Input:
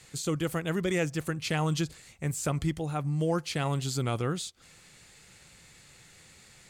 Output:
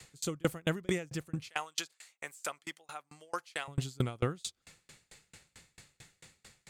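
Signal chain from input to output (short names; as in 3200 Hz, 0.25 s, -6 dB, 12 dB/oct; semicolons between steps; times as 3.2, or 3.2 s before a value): 1.49–3.68 HPF 830 Hz 12 dB/oct; dB-ramp tremolo decaying 4.5 Hz, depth 34 dB; gain +4.5 dB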